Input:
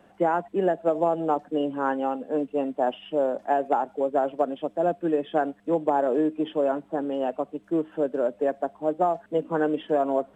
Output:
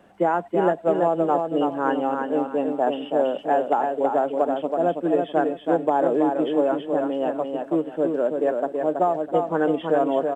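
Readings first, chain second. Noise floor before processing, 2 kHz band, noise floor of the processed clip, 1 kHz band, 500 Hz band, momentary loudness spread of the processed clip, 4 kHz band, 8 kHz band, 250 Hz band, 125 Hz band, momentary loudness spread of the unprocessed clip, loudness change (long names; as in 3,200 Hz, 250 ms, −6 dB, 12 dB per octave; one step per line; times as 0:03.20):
−58 dBFS, +3.5 dB, −41 dBFS, +3.5 dB, +3.5 dB, 4 LU, +3.5 dB, can't be measured, +3.5 dB, +3.5 dB, 4 LU, +3.5 dB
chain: repeating echo 327 ms, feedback 28%, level −4.5 dB
level +2 dB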